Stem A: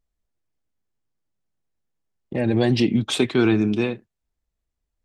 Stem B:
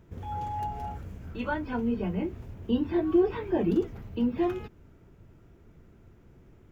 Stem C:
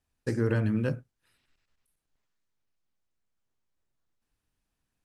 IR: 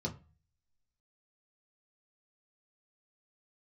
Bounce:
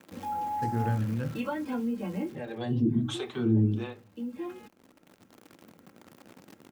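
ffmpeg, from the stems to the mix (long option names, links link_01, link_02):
-filter_complex "[0:a]acrossover=split=460[link_01][link_02];[link_01]aeval=exprs='val(0)*(1-1/2+1/2*cos(2*PI*1.4*n/s))':channel_layout=same[link_03];[link_02]aeval=exprs='val(0)*(1-1/2-1/2*cos(2*PI*1.4*n/s))':channel_layout=same[link_04];[link_03][link_04]amix=inputs=2:normalize=0,volume=-8.5dB,asplit=3[link_05][link_06][link_07];[link_06]volume=-5dB[link_08];[1:a]aecho=1:1:3.7:0.94,acrusher=bits=9:dc=4:mix=0:aa=0.000001,volume=1dB[link_09];[2:a]adelay=350,volume=-6.5dB,asplit=2[link_10][link_11];[link_11]volume=-14.5dB[link_12];[link_07]apad=whole_len=296374[link_13];[link_09][link_13]sidechaincompress=threshold=-45dB:ratio=6:attack=6.3:release=1410[link_14];[link_05][link_14]amix=inputs=2:normalize=0,highpass=frequency=130:width=0.5412,highpass=frequency=130:width=1.3066,acompressor=threshold=-32dB:ratio=2.5,volume=0dB[link_15];[3:a]atrim=start_sample=2205[link_16];[link_08][link_12]amix=inputs=2:normalize=0[link_17];[link_17][link_16]afir=irnorm=-1:irlink=0[link_18];[link_10][link_15][link_18]amix=inputs=3:normalize=0"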